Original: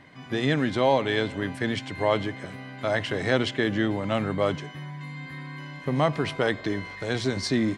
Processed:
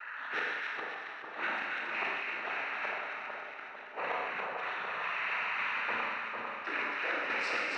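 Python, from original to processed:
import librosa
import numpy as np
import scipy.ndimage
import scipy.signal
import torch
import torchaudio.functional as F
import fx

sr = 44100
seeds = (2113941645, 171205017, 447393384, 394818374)

p1 = fx.level_steps(x, sr, step_db=20)
p2 = x + (p1 * 10.0 ** (-1.0 / 20.0))
p3 = scipy.signal.sosfilt(scipy.signal.cheby1(2, 1.0, [800.0, 2300.0], 'bandpass', fs=sr, output='sos'), p2)
p4 = p3 + 10.0 ** (-43.0 / 20.0) * np.sin(2.0 * np.pi * 1400.0 * np.arange(len(p3)) / sr)
p5 = fx.noise_vocoder(p4, sr, seeds[0], bands=12)
p6 = fx.gate_flip(p5, sr, shuts_db=-24.0, range_db=-32)
p7 = fx.echo_split(p6, sr, split_hz=1300.0, low_ms=450, high_ms=275, feedback_pct=52, wet_db=-3.5)
p8 = fx.rev_schroeder(p7, sr, rt60_s=1.3, comb_ms=31, drr_db=0.0)
y = fx.sustainer(p8, sr, db_per_s=24.0)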